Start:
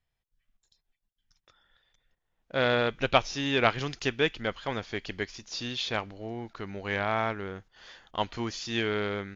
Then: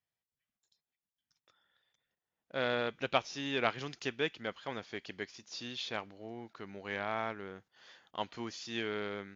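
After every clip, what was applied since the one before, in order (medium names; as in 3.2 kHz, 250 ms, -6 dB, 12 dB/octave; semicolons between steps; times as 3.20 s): high-pass 140 Hz 12 dB/octave; trim -7.5 dB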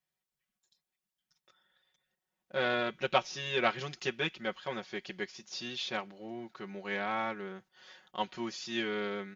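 comb 5.4 ms, depth 95%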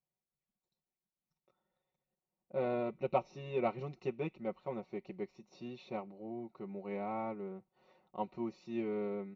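boxcar filter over 27 samples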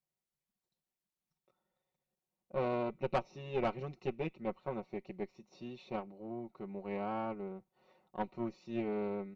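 valve stage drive 29 dB, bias 0.75; trim +4 dB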